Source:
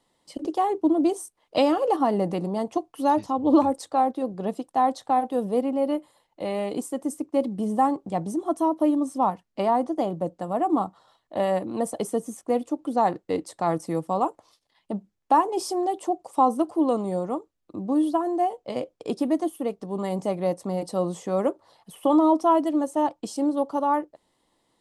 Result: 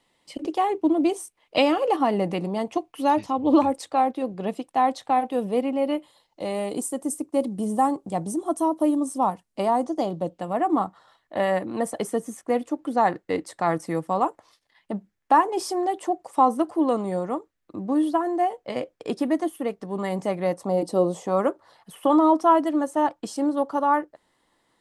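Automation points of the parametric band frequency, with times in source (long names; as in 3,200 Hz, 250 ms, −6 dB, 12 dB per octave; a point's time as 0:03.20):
parametric band +9 dB 0.92 octaves
0:05.94 2,400 Hz
0:06.62 9,300 Hz
0:09.69 9,300 Hz
0:10.63 1,800 Hz
0:20.53 1,800 Hz
0:20.86 270 Hz
0:21.50 1,600 Hz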